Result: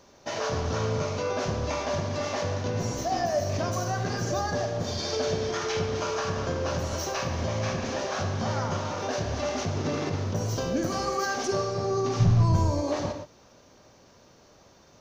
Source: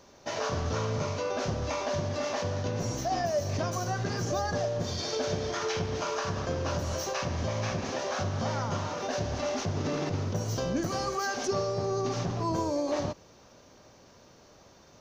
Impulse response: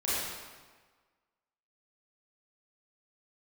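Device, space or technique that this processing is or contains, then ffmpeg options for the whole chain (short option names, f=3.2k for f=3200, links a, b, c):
keyed gated reverb: -filter_complex "[0:a]asplit=3[a][b][c];[1:a]atrim=start_sample=2205[d];[b][d]afir=irnorm=-1:irlink=0[e];[c]apad=whole_len=661832[f];[e][f]sidechaingate=range=-33dB:threshold=-46dB:ratio=16:detection=peak,volume=-13.5dB[g];[a][g]amix=inputs=2:normalize=0,asplit=3[h][i][j];[h]afade=t=out:st=12.19:d=0.02[k];[i]asubboost=boost=10.5:cutoff=110,afade=t=in:st=12.19:d=0.02,afade=t=out:st=12.81:d=0.02[l];[j]afade=t=in:st=12.81:d=0.02[m];[k][l][m]amix=inputs=3:normalize=0"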